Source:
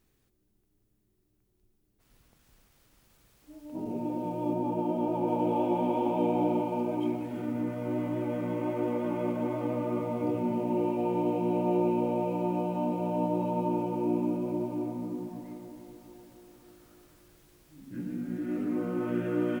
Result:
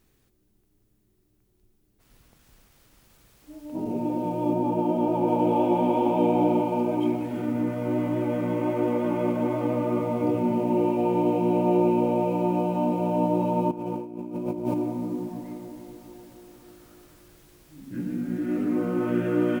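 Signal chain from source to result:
0:13.71–0:14.74: compressor whose output falls as the input rises −35 dBFS, ratio −0.5
level +5.5 dB

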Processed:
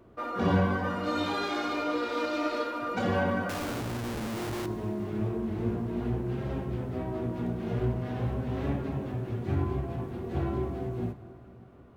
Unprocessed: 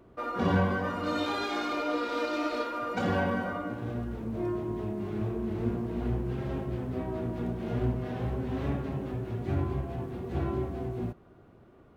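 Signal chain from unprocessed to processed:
flanger 0.97 Hz, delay 8.7 ms, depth 1.6 ms, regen −61%
0:03.49–0:04.66: comparator with hysteresis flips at −50.5 dBFS
dense smooth reverb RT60 3.9 s, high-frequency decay 0.75×, DRR 12.5 dB
level +4.5 dB

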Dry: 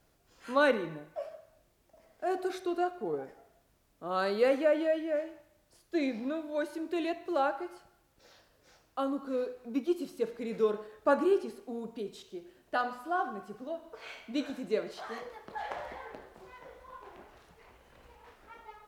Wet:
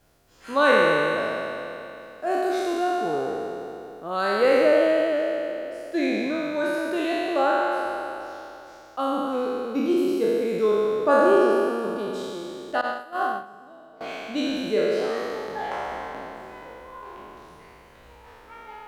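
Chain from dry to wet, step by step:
peak hold with a decay on every bin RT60 2.99 s
0:12.81–0:14.01: noise gate −26 dBFS, range −17 dB
level +3.5 dB

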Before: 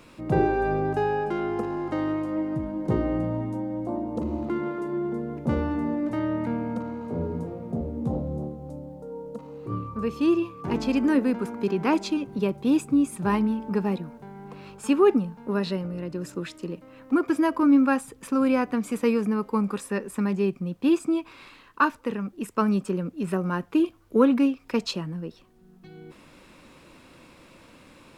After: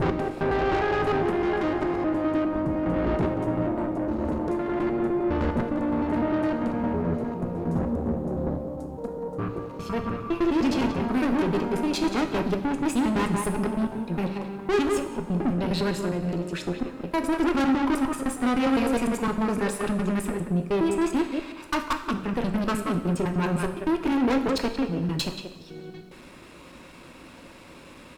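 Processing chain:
slices reordered back to front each 102 ms, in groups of 4
far-end echo of a speakerphone 180 ms, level −8 dB
tube saturation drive 28 dB, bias 0.6
on a send at −6 dB: convolution reverb, pre-delay 3 ms
on the sum: level +6.5 dB

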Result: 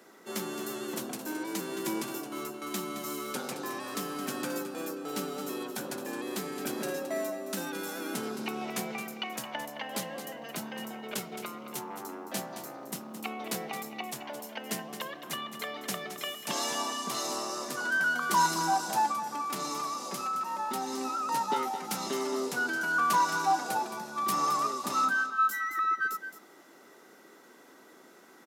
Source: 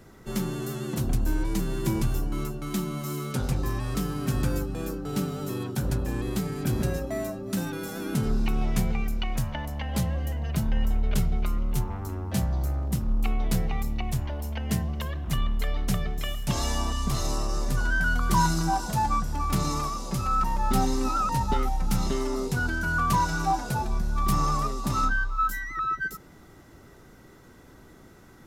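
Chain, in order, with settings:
Bessel high-pass filter 360 Hz, order 6
0:19.11–0:21.29: downward compressor, threshold −31 dBFS, peak gain reduction 7.5 dB
single-tap delay 218 ms −10.5 dB

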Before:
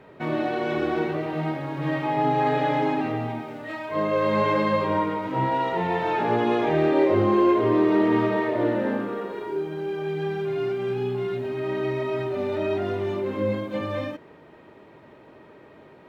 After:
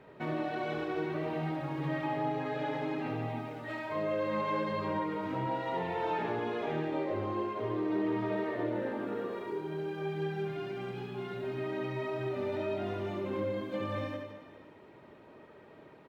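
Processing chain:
reverb reduction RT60 0.56 s
downward compressor, threshold −26 dBFS, peak gain reduction 9 dB
reverse bouncing-ball delay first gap 70 ms, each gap 1.25×, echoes 5
level −6 dB

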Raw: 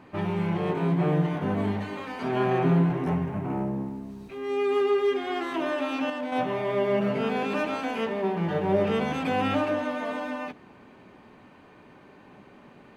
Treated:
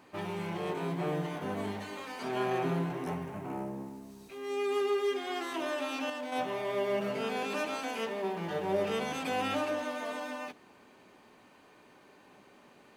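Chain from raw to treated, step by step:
bass and treble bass −8 dB, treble +12 dB
level −5.5 dB

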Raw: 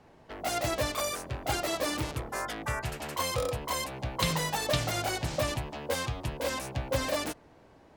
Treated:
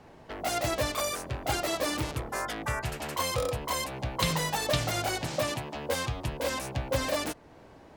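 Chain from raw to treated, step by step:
0:05.23–0:05.75: high-pass filter 130 Hz 12 dB per octave
in parallel at −2.5 dB: downward compressor, threshold −45 dBFS, peak gain reduction 20 dB

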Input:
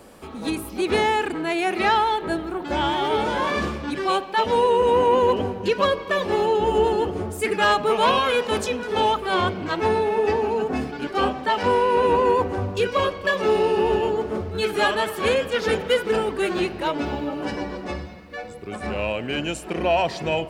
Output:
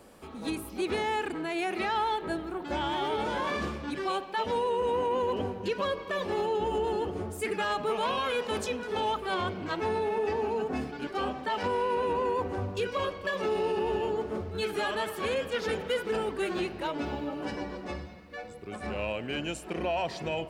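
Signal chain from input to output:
brickwall limiter −14.5 dBFS, peak gain reduction 6.5 dB
level −7 dB

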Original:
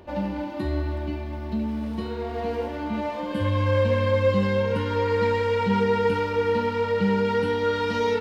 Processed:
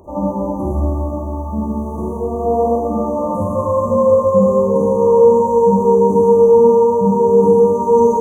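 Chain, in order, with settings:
four-comb reverb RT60 1.8 s, DRR −6.5 dB
brick-wall band-stop 1,200–5,900 Hz
level +4 dB

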